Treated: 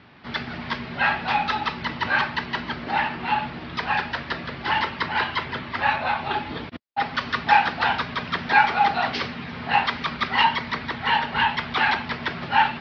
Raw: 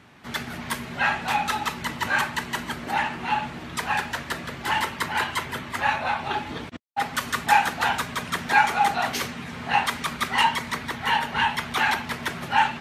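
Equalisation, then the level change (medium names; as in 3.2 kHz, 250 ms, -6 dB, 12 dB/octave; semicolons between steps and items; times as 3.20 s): steep low-pass 5.2 kHz 72 dB/octave; +1.5 dB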